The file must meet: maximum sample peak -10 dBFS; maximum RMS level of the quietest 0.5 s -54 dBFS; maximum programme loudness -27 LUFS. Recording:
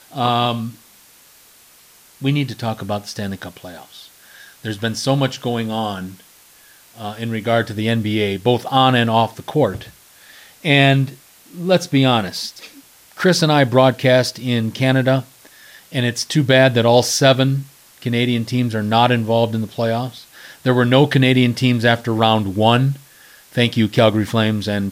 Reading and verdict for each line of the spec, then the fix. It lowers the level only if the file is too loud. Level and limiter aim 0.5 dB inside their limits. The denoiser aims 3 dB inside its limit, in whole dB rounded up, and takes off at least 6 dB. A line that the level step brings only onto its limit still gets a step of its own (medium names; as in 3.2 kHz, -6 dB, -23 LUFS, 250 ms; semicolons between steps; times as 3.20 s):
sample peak -1.5 dBFS: fail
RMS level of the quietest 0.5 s -48 dBFS: fail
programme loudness -17.0 LUFS: fail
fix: trim -10.5 dB